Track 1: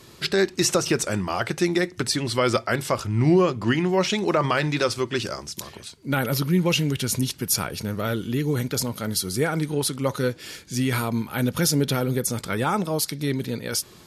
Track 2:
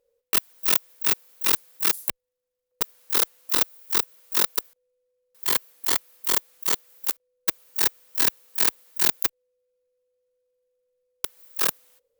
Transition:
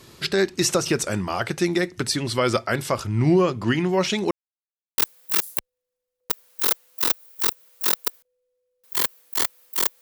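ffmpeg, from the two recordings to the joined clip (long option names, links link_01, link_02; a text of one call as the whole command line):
ffmpeg -i cue0.wav -i cue1.wav -filter_complex "[0:a]apad=whole_dur=10.01,atrim=end=10.01,asplit=2[link_01][link_02];[link_01]atrim=end=4.31,asetpts=PTS-STARTPTS,afade=type=out:start_time=4.306:duration=0.004:curve=hsin[link_03];[link_02]atrim=start=4.31:end=4.98,asetpts=PTS-STARTPTS,volume=0[link_04];[1:a]atrim=start=1.49:end=6.52,asetpts=PTS-STARTPTS,afade=type=in:duration=0.004:curve=hsin[link_05];[link_03][link_04][link_05]concat=n=3:v=0:a=1" out.wav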